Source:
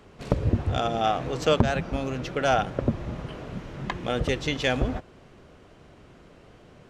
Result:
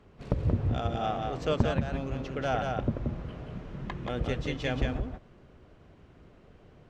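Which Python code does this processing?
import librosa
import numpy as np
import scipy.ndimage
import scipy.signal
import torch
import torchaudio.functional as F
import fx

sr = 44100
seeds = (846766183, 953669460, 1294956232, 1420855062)

y = fx.lowpass(x, sr, hz=3900.0, slope=6)
y = fx.low_shelf(y, sr, hz=200.0, db=6.0)
y = y + 10.0 ** (-4.0 / 20.0) * np.pad(y, (int(179 * sr / 1000.0), 0))[:len(y)]
y = y * 10.0 ** (-8.0 / 20.0)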